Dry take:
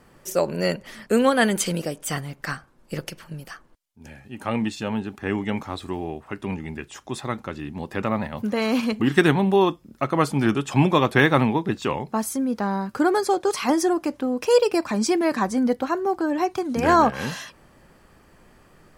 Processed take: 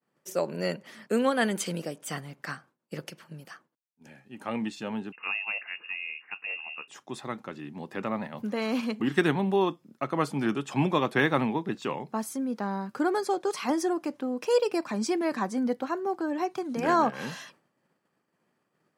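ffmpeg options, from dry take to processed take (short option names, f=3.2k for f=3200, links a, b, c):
-filter_complex "[0:a]asettb=1/sr,asplit=3[a][b][c];[a]atrim=end=5.124[d];[b]atrim=start=5.12:end=6.88,asetpts=PTS-STARTPTS,afade=t=in:d=0.004:c=qsin,afade=t=out:st=1.756:d=0.004:c=qsin,lowpass=f=2.5k:t=q:w=0.5098,lowpass=f=2.5k:t=q:w=0.6013,lowpass=f=2.5k:t=q:w=0.9,lowpass=f=2.5k:t=q:w=2.563,afreqshift=-2900[e];[c]atrim=start=6.876[f];[d][e]acrossfade=d=0.004:c1=hsin:c2=qsin[g];[g][f]acrossfade=d=0.004:c1=qsin:c2=hsin,highshelf=f=7.6k:g=-4,agate=range=-33dB:threshold=-43dB:ratio=3:detection=peak,highpass=f=140:w=0.5412,highpass=f=140:w=1.3066,volume=-6.5dB"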